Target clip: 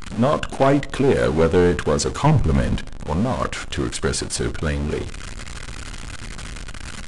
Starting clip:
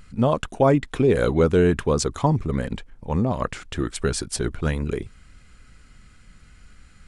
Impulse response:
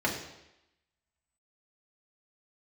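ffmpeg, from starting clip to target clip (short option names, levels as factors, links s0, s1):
-filter_complex "[0:a]aeval=exprs='val(0)+0.5*0.0473*sgn(val(0))':c=same,asettb=1/sr,asplit=3[s0][s1][s2];[s0]atrim=end=2.264[s3];[s1]atrim=start=2.26:end=2.77,asetpts=PTS-STARTPTS,afade=t=in:d=0.004:c=qsin,afade=t=out:st=0.506:d=0.004:c=qsin,lowshelf=f=210:g=8[s4];[s2]atrim=start=2.766[s5];[s3][s4]acrossfade=d=0.004:c1=hsin:c2=qsin[s6];[s6][s5]acrossfade=d=0.004:c1=qsin:c2=hsin,aeval=exprs='0.531*(cos(1*acos(clip(val(0)/0.531,-1,1)))-cos(1*PI/2))+0.075*(cos(6*acos(clip(val(0)/0.531,-1,1)))-cos(6*PI/2))+0.0376*(cos(8*acos(clip(val(0)/0.531,-1,1)))-cos(8*PI/2))':c=same,aresample=22050,aresample=44100,asplit=2[s7][s8];[1:a]atrim=start_sample=2205,asetrate=70560,aresample=44100[s9];[s8][s9]afir=irnorm=-1:irlink=0,volume=0.1[s10];[s7][s10]amix=inputs=2:normalize=0"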